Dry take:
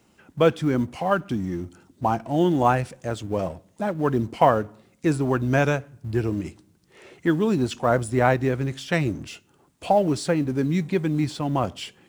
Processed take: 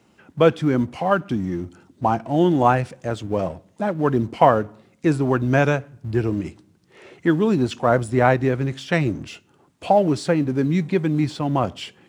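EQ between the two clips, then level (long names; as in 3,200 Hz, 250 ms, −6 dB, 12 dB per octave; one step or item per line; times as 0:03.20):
high-pass filter 70 Hz
high-shelf EQ 7,300 Hz −10 dB
+3.0 dB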